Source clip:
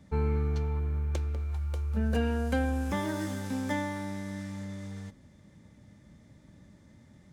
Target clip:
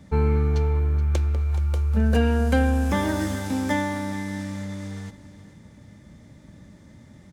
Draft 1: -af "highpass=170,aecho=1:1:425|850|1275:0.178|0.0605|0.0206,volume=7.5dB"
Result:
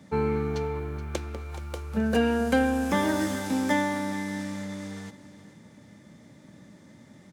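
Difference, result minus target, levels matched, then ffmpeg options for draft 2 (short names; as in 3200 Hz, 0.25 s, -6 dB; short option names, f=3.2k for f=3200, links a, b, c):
125 Hz band -8.0 dB
-af "aecho=1:1:425|850|1275:0.178|0.0605|0.0206,volume=7.5dB"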